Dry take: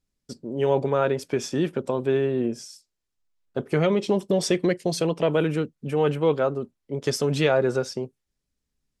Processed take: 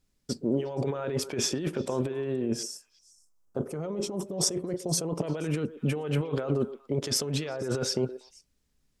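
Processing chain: 2.63–5.24 band shelf 2700 Hz -12 dB; negative-ratio compressor -30 dBFS, ratio -1; delay with a stepping band-pass 0.119 s, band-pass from 440 Hz, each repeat 1.4 oct, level -11.5 dB

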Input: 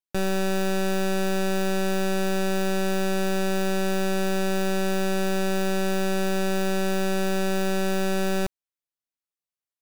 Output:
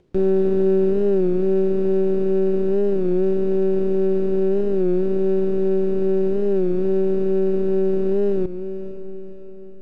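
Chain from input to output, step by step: in parallel at -6.5 dB: decimation with a swept rate 31×, swing 160% 2.4 Hz; on the sum: diffused feedback echo 0.495 s, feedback 51%, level -13.5 dB; limiter -18 dBFS, peak gain reduction 2.5 dB; tilt shelf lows +9 dB, about 670 Hz; upward compressor, threshold -27 dBFS; LPF 4100 Hz 12 dB/oct; bell 380 Hz +13.5 dB 0.53 oct; record warp 33 1/3 rpm, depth 100 cents; gain -8 dB

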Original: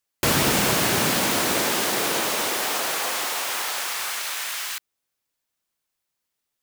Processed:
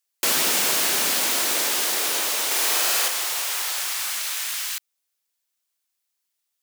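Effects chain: HPF 300 Hz 12 dB/oct; high shelf 2200 Hz +10 dB; 2.46–3.08 flutter echo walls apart 8.7 m, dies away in 1.3 s; gain -6.5 dB

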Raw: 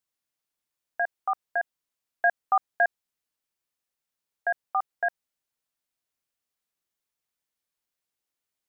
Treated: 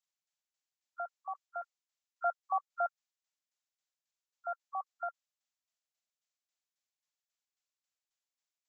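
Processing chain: nonlinear frequency compression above 1000 Hz 1.5:1; steep high-pass 520 Hz 96 dB/oct; tremolo saw down 3.7 Hz, depth 60%; gain -6 dB

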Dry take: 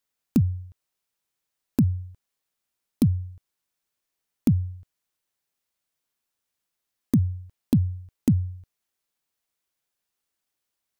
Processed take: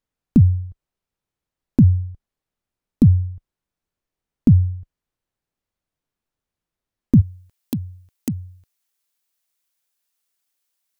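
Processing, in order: tilt -3 dB/oct, from 7.2 s +2 dB/oct

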